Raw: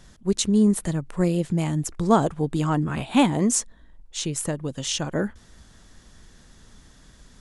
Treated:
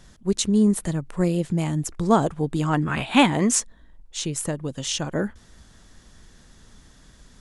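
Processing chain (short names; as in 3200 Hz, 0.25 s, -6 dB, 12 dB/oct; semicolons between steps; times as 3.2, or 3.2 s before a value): 2.73–3.6 bell 2000 Hz +8 dB 2.2 oct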